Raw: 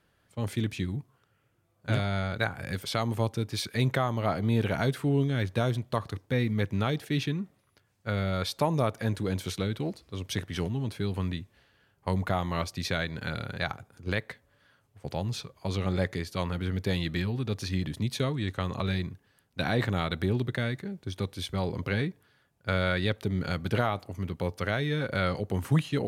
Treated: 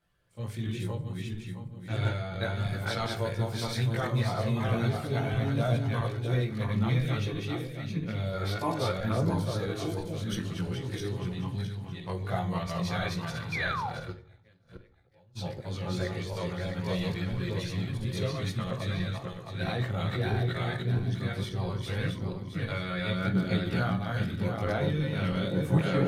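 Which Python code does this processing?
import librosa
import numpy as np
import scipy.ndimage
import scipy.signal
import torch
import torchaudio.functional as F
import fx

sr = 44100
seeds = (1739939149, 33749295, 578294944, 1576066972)

y = fx.reverse_delay_fb(x, sr, ms=333, feedback_pct=57, wet_db=-0.5)
y = fx.gate_flip(y, sr, shuts_db=-28.0, range_db=-27, at=(14.1, 15.35), fade=0.02)
y = fx.chorus_voices(y, sr, voices=4, hz=0.42, base_ms=18, depth_ms=1.4, mix_pct=60)
y = fx.spec_paint(y, sr, seeds[0], shape='fall', start_s=13.52, length_s=0.38, low_hz=710.0, high_hz=2500.0, level_db=-30.0)
y = fx.room_shoebox(y, sr, seeds[1], volume_m3=360.0, walls='furnished', distance_m=0.8)
y = F.gain(torch.from_numpy(y), -3.5).numpy()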